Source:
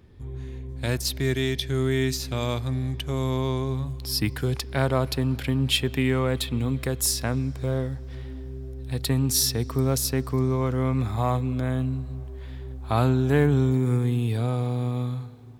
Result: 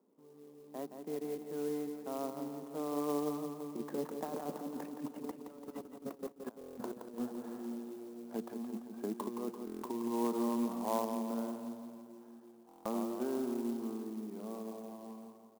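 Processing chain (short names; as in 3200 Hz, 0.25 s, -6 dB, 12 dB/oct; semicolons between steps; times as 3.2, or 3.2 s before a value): Doppler pass-by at 6.38, 38 m/s, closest 19 m; steep high-pass 200 Hz 48 dB/oct; low shelf 490 Hz +5.5 dB; negative-ratio compressor -40 dBFS, ratio -0.5; ladder low-pass 1200 Hz, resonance 40%; feedback echo 0.17 s, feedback 59%, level -7.5 dB; stuck buffer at 6.59/9.65/12.67, samples 1024, times 7; clock jitter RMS 0.045 ms; gain +8.5 dB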